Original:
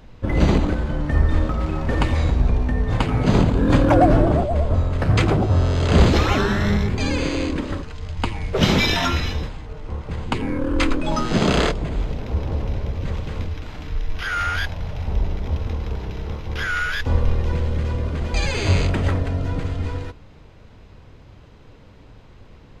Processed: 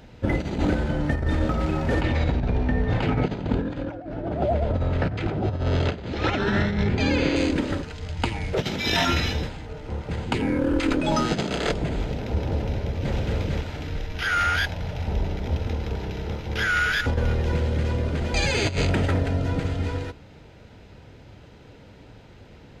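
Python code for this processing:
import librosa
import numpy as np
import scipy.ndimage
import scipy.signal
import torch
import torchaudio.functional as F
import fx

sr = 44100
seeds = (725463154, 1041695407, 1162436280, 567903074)

y = fx.lowpass(x, sr, hz=4200.0, slope=12, at=(2.01, 7.36))
y = fx.echo_throw(y, sr, start_s=12.59, length_s=0.57, ms=450, feedback_pct=35, wet_db=-0.5)
y = fx.echo_throw(y, sr, start_s=16.28, length_s=0.51, ms=270, feedback_pct=35, wet_db=-9.0)
y = fx.highpass(y, sr, hz=91.0, slope=6)
y = fx.notch(y, sr, hz=1100.0, q=5.1)
y = fx.over_compress(y, sr, threshold_db=-22.0, ratio=-0.5)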